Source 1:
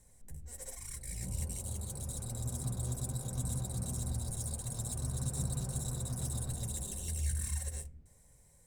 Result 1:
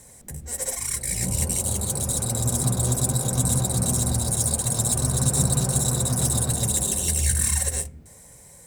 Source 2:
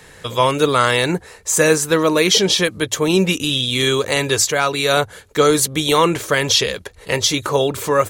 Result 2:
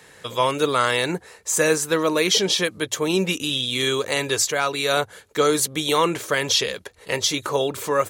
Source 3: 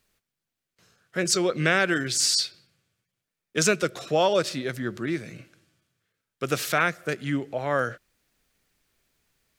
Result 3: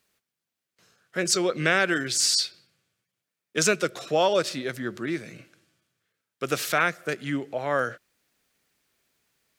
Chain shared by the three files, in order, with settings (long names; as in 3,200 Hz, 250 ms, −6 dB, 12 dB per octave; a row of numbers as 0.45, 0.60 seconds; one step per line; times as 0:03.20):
high-pass filter 180 Hz 6 dB per octave
normalise the peak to −6 dBFS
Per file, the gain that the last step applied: +18.0, −4.5, 0.0 decibels